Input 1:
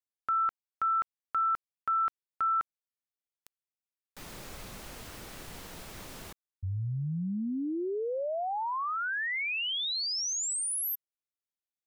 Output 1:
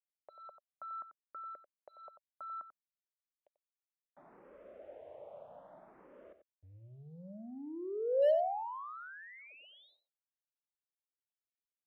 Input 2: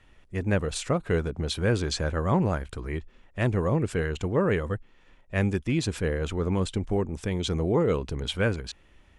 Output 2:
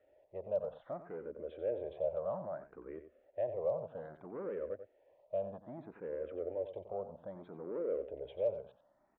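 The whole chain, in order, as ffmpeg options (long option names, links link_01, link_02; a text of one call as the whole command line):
ffmpeg -i in.wav -filter_complex "[0:a]aemphasis=mode=reproduction:type=75fm,acompressor=threshold=-28dB:ratio=2:attack=15:release=74:knee=1:detection=rms,aresample=8000,asoftclip=type=tanh:threshold=-27dB,aresample=44100,acrusher=bits=10:mix=0:aa=0.000001,bandpass=frequency=590:width_type=q:width=6.5:csg=0,asoftclip=type=hard:threshold=-32dB,aecho=1:1:91:0.282,asplit=2[link_01][link_02];[link_02]afreqshift=0.62[link_03];[link_01][link_03]amix=inputs=2:normalize=1,volume=8.5dB" out.wav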